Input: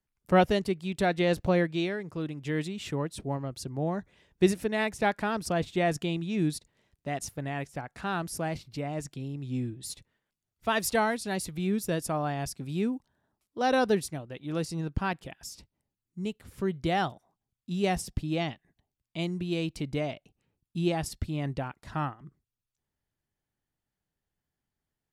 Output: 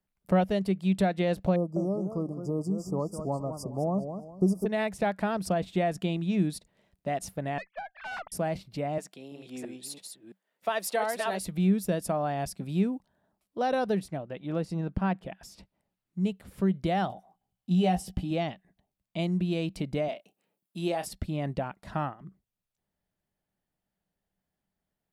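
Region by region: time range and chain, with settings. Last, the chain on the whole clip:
0:01.56–0:04.66: linear-phase brick-wall band-stop 1,300–4,700 Hz + feedback echo with a swinging delay time 204 ms, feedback 32%, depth 197 cents, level −10.5 dB
0:07.58–0:08.32: three sine waves on the formant tracks + high-pass filter 790 Hz 24 dB per octave + tube saturation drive 35 dB, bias 0.6
0:08.98–0:11.40: delay that plays each chunk backwards 335 ms, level −4 dB + high-pass filter 410 Hz
0:13.99–0:16.20: high-shelf EQ 3,800 Hz −12 dB + one half of a high-frequency compander encoder only
0:17.08–0:18.31: double-tracking delay 17 ms −6 dB + hollow resonant body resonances 780/3,000 Hz, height 12 dB
0:20.08–0:21.06: high-pass filter 310 Hz + high-shelf EQ 8,800 Hz +9 dB + double-tracking delay 29 ms −11 dB
whole clip: graphic EQ with 15 bands 100 Hz −3 dB, 630 Hz +7 dB, 6,300 Hz −4 dB; downward compressor 2.5 to 1, threshold −27 dBFS; parametric band 190 Hz +10.5 dB 0.23 octaves

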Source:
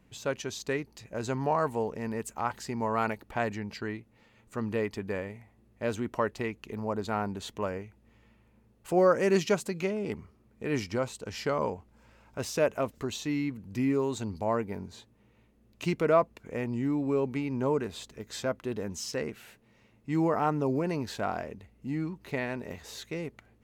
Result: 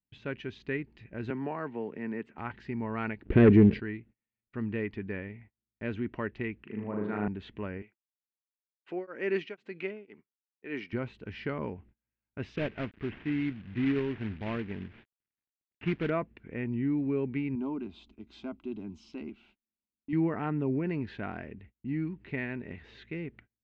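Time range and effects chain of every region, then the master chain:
0:01.30–0:02.38: high-pass filter 220 Hz + high-shelf EQ 4,900 Hz −10 dB + multiband upward and downward compressor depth 40%
0:03.25–0:03.80: low shelf with overshoot 600 Hz +11 dB, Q 3 + leveller curve on the samples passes 2
0:06.63–0:07.28: Chebyshev band-pass filter 160–1,900 Hz + flutter between parallel walls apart 6.6 metres, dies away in 0.86 s
0:07.82–0:10.93: high-pass filter 350 Hz + downward expander −60 dBFS + tremolo along a rectified sine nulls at 2 Hz
0:12.56–0:16.10: variable-slope delta modulation 16 kbit/s + log-companded quantiser 4 bits
0:17.55–0:20.13: high-shelf EQ 9,600 Hz +11 dB + phaser with its sweep stopped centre 480 Hz, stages 6
whole clip: noise gate −52 dBFS, range −33 dB; low-pass filter 2,800 Hz 24 dB per octave; flat-topped bell 780 Hz −10 dB

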